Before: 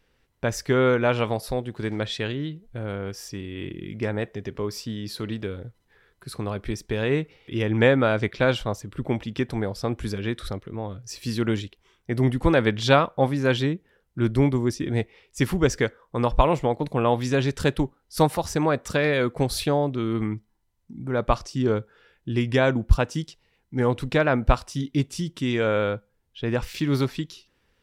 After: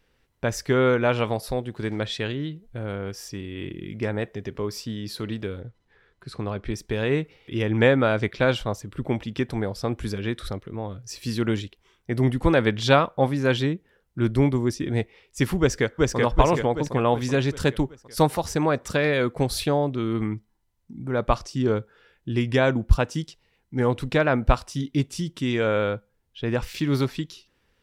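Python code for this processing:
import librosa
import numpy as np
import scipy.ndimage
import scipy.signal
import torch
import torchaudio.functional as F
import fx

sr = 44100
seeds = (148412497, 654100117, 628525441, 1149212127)

y = fx.air_absorb(x, sr, metres=70.0, at=(5.61, 6.74))
y = fx.echo_throw(y, sr, start_s=15.6, length_s=0.57, ms=380, feedback_pct=55, wet_db=-1.0)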